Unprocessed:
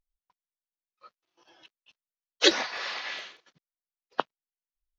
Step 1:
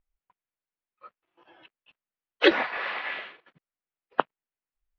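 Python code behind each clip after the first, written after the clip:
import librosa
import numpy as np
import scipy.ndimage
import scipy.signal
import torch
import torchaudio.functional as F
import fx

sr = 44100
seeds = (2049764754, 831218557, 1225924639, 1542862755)

y = scipy.signal.sosfilt(scipy.signal.butter(4, 2700.0, 'lowpass', fs=sr, output='sos'), x)
y = F.gain(torch.from_numpy(y), 4.5).numpy()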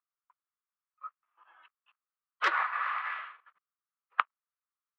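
y = fx.self_delay(x, sr, depth_ms=0.25)
y = fx.ladder_bandpass(y, sr, hz=1300.0, resonance_pct=70)
y = F.gain(torch.from_numpy(y), 7.0).numpy()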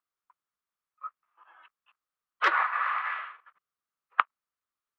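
y = fx.high_shelf(x, sr, hz=3800.0, db=-7.0)
y = F.gain(torch.from_numpy(y), 4.5).numpy()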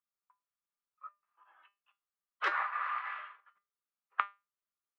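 y = fx.comb_fb(x, sr, f0_hz=200.0, decay_s=0.24, harmonics='all', damping=0.0, mix_pct=70)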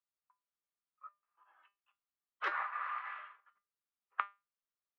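y = fx.high_shelf(x, sr, hz=5500.0, db=-9.0)
y = F.gain(torch.from_numpy(y), -3.5).numpy()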